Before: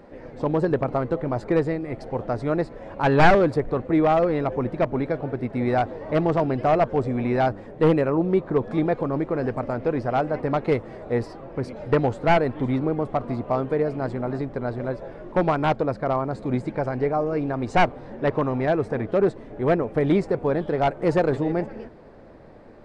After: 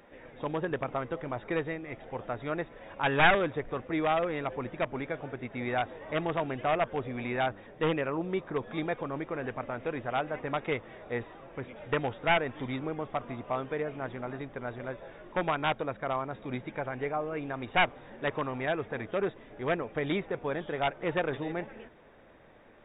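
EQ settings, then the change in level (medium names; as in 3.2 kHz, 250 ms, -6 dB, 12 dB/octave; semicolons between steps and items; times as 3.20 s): brick-wall FIR low-pass 3.8 kHz; tilt shelf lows -8.5 dB, about 1.3 kHz; -4.0 dB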